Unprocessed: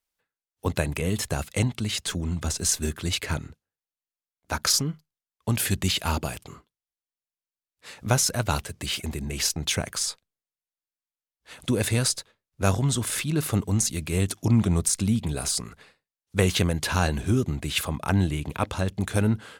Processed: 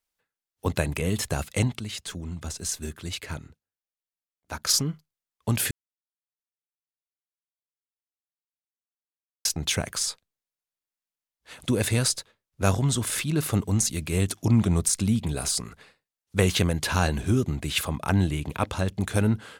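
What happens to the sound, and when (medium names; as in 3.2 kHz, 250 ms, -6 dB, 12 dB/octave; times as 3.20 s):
1.79–4.69 s: gain -6.5 dB
5.71–9.45 s: mute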